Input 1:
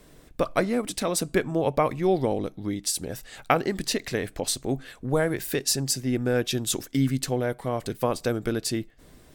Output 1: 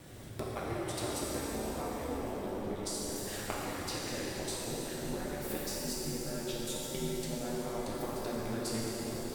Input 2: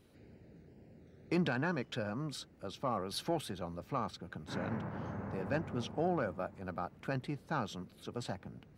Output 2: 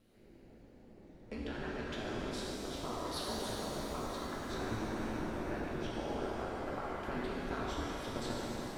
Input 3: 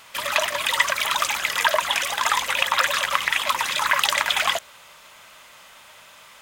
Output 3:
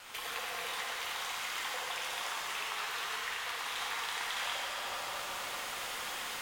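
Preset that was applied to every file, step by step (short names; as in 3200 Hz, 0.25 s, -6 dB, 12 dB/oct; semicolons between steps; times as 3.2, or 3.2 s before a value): analogue delay 0.222 s, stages 2048, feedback 59%, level -17.5 dB; compressor 20:1, threshold -36 dBFS; ring modulator 110 Hz; vocal rider within 4 dB 2 s; shimmer reverb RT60 3.5 s, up +7 st, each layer -8 dB, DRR -5 dB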